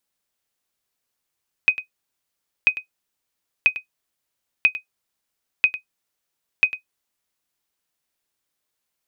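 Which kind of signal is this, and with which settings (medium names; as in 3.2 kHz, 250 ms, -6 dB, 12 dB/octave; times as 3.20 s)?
sonar ping 2.51 kHz, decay 0.11 s, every 0.99 s, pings 6, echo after 0.10 s, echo -14.5 dB -5.5 dBFS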